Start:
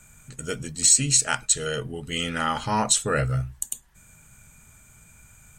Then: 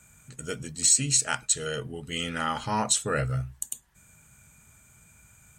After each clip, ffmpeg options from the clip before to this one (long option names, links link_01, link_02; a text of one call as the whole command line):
ffmpeg -i in.wav -af "highpass=51,volume=-3.5dB" out.wav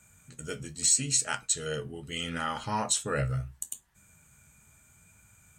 ffmpeg -i in.wav -af "flanger=delay=9.4:depth=5.7:regen=60:speed=0.76:shape=triangular,volume=1dB" out.wav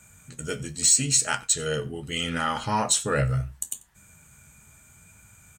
ffmpeg -i in.wav -filter_complex "[0:a]asplit=2[link_01][link_02];[link_02]asoftclip=type=tanh:threshold=-24.5dB,volume=-7dB[link_03];[link_01][link_03]amix=inputs=2:normalize=0,aecho=1:1:91:0.075,volume=3dB" out.wav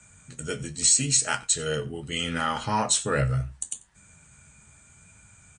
ffmpeg -i in.wav -filter_complex "[0:a]acrossover=split=260|7200[link_01][link_02][link_03];[link_03]volume=18.5dB,asoftclip=hard,volume=-18.5dB[link_04];[link_01][link_02][link_04]amix=inputs=3:normalize=0" -ar 22050 -c:a libmp3lame -b:a 48k out.mp3